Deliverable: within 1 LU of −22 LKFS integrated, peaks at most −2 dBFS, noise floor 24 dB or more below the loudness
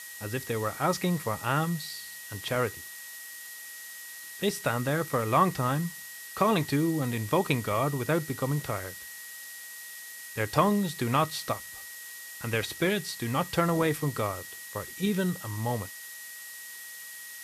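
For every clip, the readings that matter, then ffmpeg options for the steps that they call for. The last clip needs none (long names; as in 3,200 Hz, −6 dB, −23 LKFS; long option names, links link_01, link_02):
interfering tone 1,900 Hz; level of the tone −45 dBFS; background noise floor −44 dBFS; target noise floor −55 dBFS; integrated loudness −30.5 LKFS; sample peak −8.0 dBFS; target loudness −22.0 LKFS
→ -af "bandreject=frequency=1900:width=30"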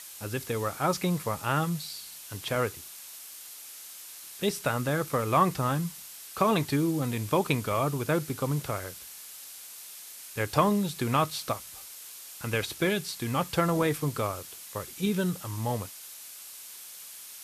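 interfering tone none found; background noise floor −45 dBFS; target noise floor −54 dBFS
→ -af "afftdn=noise_reduction=9:noise_floor=-45"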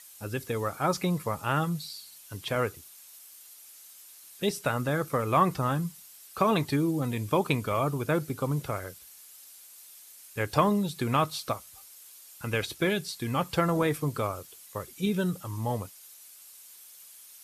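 background noise floor −51 dBFS; target noise floor −54 dBFS
→ -af "afftdn=noise_reduction=6:noise_floor=-51"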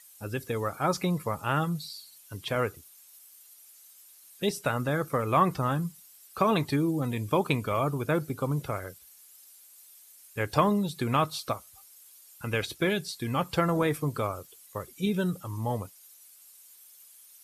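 background noise floor −55 dBFS; integrated loudness −29.5 LKFS; sample peak −8.5 dBFS; target loudness −22.0 LKFS
→ -af "volume=7.5dB,alimiter=limit=-2dB:level=0:latency=1"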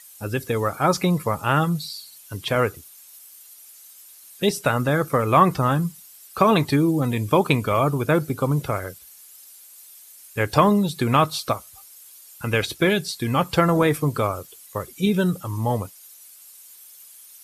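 integrated loudness −22.0 LKFS; sample peak −2.0 dBFS; background noise floor −47 dBFS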